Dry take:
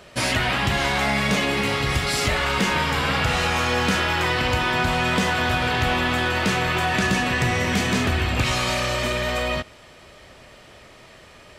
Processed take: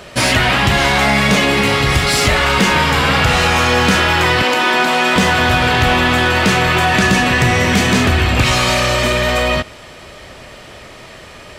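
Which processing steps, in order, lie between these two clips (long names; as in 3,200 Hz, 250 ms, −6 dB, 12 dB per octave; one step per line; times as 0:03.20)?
in parallel at −5.5 dB: soft clipping −27 dBFS, distortion −8 dB
0:04.42–0:05.16: on the sum: high-pass filter 230 Hz 24 dB per octave
level +7 dB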